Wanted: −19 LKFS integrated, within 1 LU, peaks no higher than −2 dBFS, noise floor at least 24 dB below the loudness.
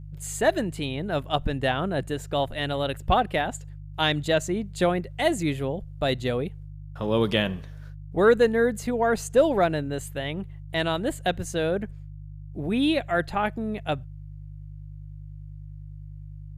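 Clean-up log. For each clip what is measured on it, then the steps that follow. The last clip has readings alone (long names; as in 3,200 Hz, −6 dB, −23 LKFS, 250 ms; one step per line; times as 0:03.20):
mains hum 50 Hz; hum harmonics up to 150 Hz; level of the hum −38 dBFS; integrated loudness −26.0 LKFS; sample peak −7.0 dBFS; target loudness −19.0 LKFS
→ hum removal 50 Hz, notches 3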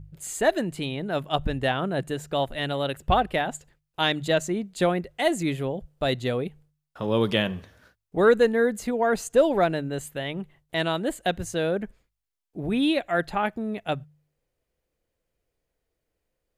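mains hum none found; integrated loudness −26.0 LKFS; sample peak −6.5 dBFS; target loudness −19.0 LKFS
→ level +7 dB
brickwall limiter −2 dBFS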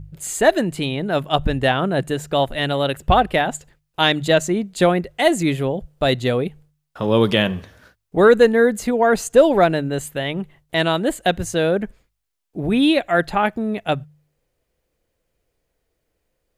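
integrated loudness −19.0 LKFS; sample peak −2.0 dBFS; background noise floor −75 dBFS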